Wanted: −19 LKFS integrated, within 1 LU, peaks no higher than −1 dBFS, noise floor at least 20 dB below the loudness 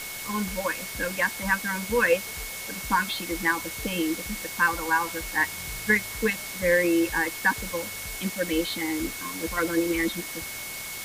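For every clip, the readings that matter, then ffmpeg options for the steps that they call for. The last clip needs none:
interfering tone 2,200 Hz; level of the tone −39 dBFS; background noise floor −36 dBFS; target noise floor −47 dBFS; integrated loudness −26.5 LKFS; sample peak −10.0 dBFS; target loudness −19.0 LKFS
→ -af "bandreject=frequency=2200:width=30"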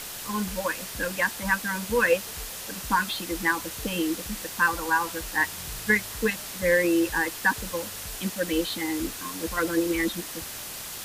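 interfering tone none found; background noise floor −38 dBFS; target noise floor −47 dBFS
→ -af "afftdn=noise_reduction=9:noise_floor=-38"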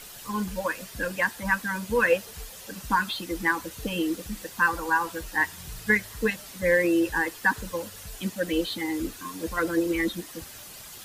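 background noise floor −44 dBFS; target noise floor −47 dBFS
→ -af "afftdn=noise_reduction=6:noise_floor=-44"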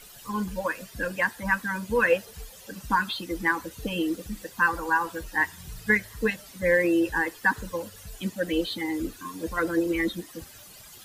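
background noise floor −48 dBFS; integrated loudness −27.0 LKFS; sample peak −10.5 dBFS; target loudness −19.0 LKFS
→ -af "volume=8dB"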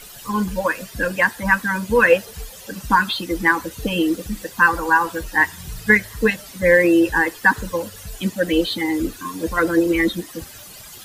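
integrated loudness −19.0 LKFS; sample peak −2.5 dBFS; background noise floor −40 dBFS

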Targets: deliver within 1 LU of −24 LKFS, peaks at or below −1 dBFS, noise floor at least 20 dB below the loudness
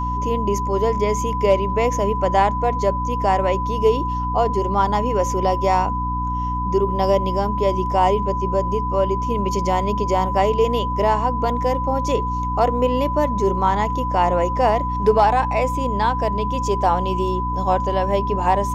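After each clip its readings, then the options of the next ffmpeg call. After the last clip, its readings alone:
mains hum 60 Hz; hum harmonics up to 300 Hz; level of the hum −23 dBFS; interfering tone 1,000 Hz; level of the tone −23 dBFS; integrated loudness −20.0 LKFS; sample peak −4.5 dBFS; target loudness −24.0 LKFS
→ -af "bandreject=frequency=60:width_type=h:width=6,bandreject=frequency=120:width_type=h:width=6,bandreject=frequency=180:width_type=h:width=6,bandreject=frequency=240:width_type=h:width=6,bandreject=frequency=300:width_type=h:width=6"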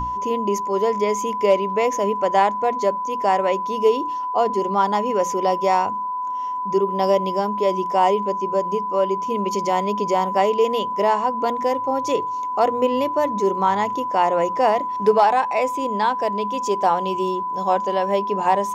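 mains hum none found; interfering tone 1,000 Hz; level of the tone −23 dBFS
→ -af "bandreject=frequency=1000:width=30"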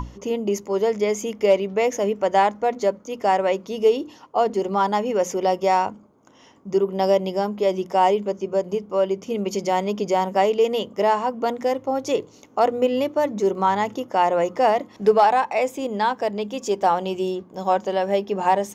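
interfering tone none found; integrated loudness −22.0 LKFS; sample peak −6.5 dBFS; target loudness −24.0 LKFS
→ -af "volume=-2dB"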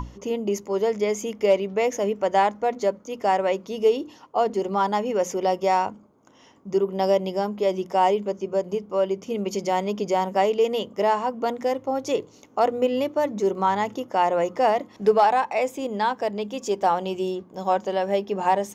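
integrated loudness −24.0 LKFS; sample peak −8.5 dBFS; background noise floor −52 dBFS

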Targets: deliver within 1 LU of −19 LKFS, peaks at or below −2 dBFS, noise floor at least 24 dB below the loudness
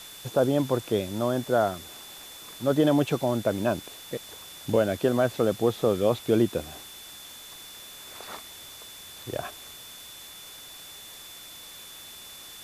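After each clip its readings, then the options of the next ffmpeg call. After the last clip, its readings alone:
interfering tone 3,500 Hz; level of the tone −46 dBFS; background noise floor −45 dBFS; target noise floor −50 dBFS; integrated loudness −26.0 LKFS; sample peak −10.5 dBFS; target loudness −19.0 LKFS
→ -af "bandreject=frequency=3500:width=30"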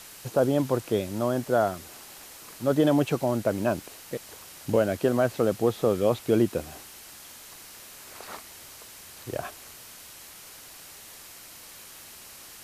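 interfering tone none found; background noise floor −47 dBFS; target noise floor −50 dBFS
→ -af "afftdn=noise_reduction=6:noise_floor=-47"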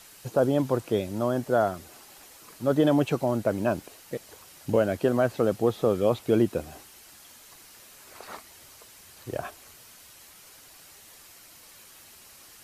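background noise floor −51 dBFS; integrated loudness −26.0 LKFS; sample peak −11.0 dBFS; target loudness −19.0 LKFS
→ -af "volume=7dB"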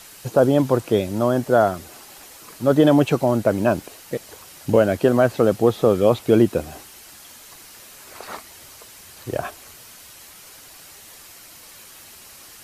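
integrated loudness −19.0 LKFS; sample peak −4.0 dBFS; background noise floor −44 dBFS

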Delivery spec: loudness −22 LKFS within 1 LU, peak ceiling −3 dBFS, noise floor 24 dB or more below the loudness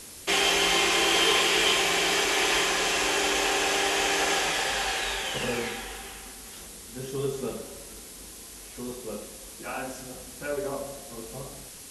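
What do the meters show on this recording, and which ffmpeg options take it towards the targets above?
background noise floor −44 dBFS; target noise floor −49 dBFS; integrated loudness −24.5 LKFS; sample peak −10.0 dBFS; target loudness −22.0 LKFS
→ -af "afftdn=noise_reduction=6:noise_floor=-44"
-af "volume=2.5dB"

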